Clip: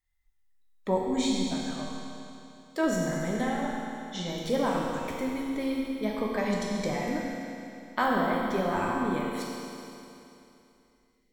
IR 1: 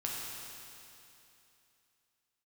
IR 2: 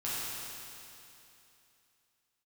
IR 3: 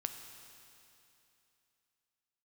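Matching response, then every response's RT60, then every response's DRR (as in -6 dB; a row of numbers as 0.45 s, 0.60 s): 1; 2.9 s, 2.9 s, 2.9 s; -4.0 dB, -10.0 dB, 6.0 dB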